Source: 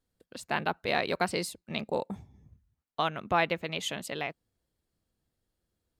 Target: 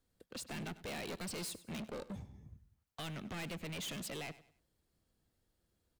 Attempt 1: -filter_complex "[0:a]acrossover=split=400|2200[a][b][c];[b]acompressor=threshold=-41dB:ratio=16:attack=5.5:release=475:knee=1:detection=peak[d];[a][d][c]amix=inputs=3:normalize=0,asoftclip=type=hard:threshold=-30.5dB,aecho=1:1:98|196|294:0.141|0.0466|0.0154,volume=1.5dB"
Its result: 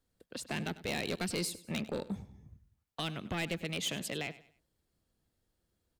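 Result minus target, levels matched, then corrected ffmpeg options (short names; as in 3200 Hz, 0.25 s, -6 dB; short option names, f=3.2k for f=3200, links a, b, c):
hard clip: distortion -8 dB
-filter_complex "[0:a]acrossover=split=400|2200[a][b][c];[b]acompressor=threshold=-41dB:ratio=16:attack=5.5:release=475:knee=1:detection=peak[d];[a][d][c]amix=inputs=3:normalize=0,asoftclip=type=hard:threshold=-42dB,aecho=1:1:98|196|294:0.141|0.0466|0.0154,volume=1.5dB"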